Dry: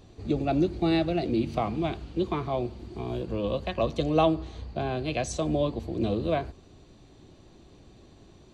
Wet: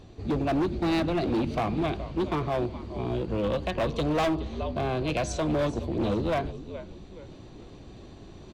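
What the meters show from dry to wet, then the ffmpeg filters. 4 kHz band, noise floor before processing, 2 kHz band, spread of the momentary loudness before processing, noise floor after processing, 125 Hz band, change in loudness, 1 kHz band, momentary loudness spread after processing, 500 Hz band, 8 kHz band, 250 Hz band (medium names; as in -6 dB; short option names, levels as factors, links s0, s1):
+0.5 dB, -54 dBFS, +3.0 dB, 9 LU, -47 dBFS, +0.5 dB, 0.0 dB, +0.5 dB, 21 LU, 0.0 dB, -0.5 dB, 0.0 dB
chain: -filter_complex "[0:a]highshelf=f=7100:g=-9.5,asplit=4[s0][s1][s2][s3];[s1]adelay=421,afreqshift=-72,volume=0.178[s4];[s2]adelay=842,afreqshift=-144,volume=0.0661[s5];[s3]adelay=1263,afreqshift=-216,volume=0.0243[s6];[s0][s4][s5][s6]amix=inputs=4:normalize=0,asoftclip=type=hard:threshold=0.0531,areverse,acompressor=mode=upward:threshold=0.00794:ratio=2.5,areverse,volume=1.41"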